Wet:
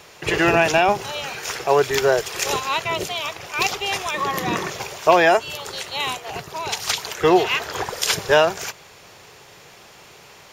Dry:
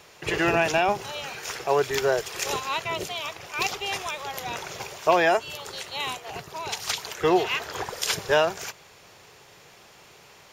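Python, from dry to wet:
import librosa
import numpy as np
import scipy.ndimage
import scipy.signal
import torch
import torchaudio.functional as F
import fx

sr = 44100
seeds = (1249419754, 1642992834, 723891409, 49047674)

y = fx.small_body(x, sr, hz=(200.0, 310.0, 1100.0, 1800.0), ring_ms=45, db=15, at=(4.14, 4.7))
y = y * librosa.db_to_amplitude(5.5)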